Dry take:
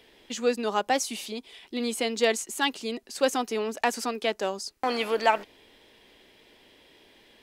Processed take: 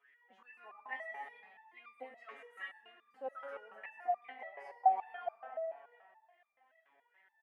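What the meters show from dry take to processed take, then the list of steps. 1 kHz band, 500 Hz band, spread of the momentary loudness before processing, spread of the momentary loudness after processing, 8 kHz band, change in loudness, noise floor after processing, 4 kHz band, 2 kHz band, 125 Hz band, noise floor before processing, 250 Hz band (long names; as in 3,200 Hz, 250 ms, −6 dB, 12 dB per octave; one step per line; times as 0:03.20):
−7.0 dB, −17.5 dB, 10 LU, 24 LU, below −40 dB, −12.0 dB, −76 dBFS, below −30 dB, −15.0 dB, can't be measured, −59 dBFS, below −30 dB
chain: flat-topped bell 5,400 Hz −14 dB 1.3 octaves
brickwall limiter −19 dBFS, peak gain reduction 10.5 dB
LFO wah 2.4 Hz 680–2,000 Hz, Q 17
on a send: single-tap delay 672 ms −20.5 dB
on the sum: comb and all-pass reverb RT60 1.7 s, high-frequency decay 0.7×, pre-delay 60 ms, DRR 4.5 dB
step-sequenced resonator 7 Hz 140–1,200 Hz
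level +17.5 dB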